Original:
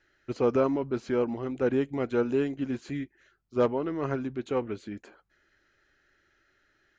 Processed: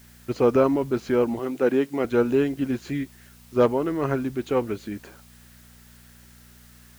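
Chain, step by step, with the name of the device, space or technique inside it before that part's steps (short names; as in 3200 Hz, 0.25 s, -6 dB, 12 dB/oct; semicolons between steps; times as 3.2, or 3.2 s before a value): video cassette with head-switching buzz (buzz 60 Hz, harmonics 4, -58 dBFS -3 dB/oct; white noise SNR 30 dB); 1.39–2.05 HPF 210 Hz 12 dB/oct; gain +5.5 dB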